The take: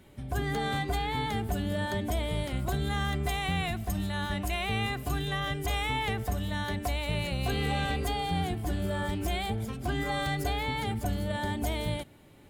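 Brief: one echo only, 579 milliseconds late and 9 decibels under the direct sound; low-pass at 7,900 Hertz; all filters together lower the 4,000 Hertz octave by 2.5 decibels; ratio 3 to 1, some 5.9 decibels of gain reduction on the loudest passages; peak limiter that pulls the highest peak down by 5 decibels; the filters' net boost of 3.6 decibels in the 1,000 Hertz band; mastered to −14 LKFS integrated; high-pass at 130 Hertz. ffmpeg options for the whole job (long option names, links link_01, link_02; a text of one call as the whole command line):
ffmpeg -i in.wav -af "highpass=130,lowpass=7900,equalizer=frequency=1000:width_type=o:gain=5,equalizer=frequency=4000:width_type=o:gain=-3.5,acompressor=threshold=-34dB:ratio=3,alimiter=level_in=4dB:limit=-24dB:level=0:latency=1,volume=-4dB,aecho=1:1:579:0.355,volume=23dB" out.wav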